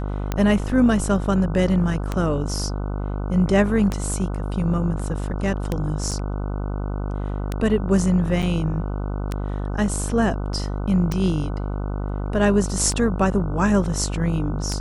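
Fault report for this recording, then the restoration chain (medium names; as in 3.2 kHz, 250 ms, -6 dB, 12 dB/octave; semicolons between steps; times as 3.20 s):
buzz 50 Hz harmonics 30 -26 dBFS
tick 33 1/3 rpm -10 dBFS
6.11–6.12 s: dropout 6.7 ms
8.42–8.43 s: dropout 6.9 ms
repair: de-click; de-hum 50 Hz, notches 30; interpolate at 6.11 s, 6.7 ms; interpolate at 8.42 s, 6.9 ms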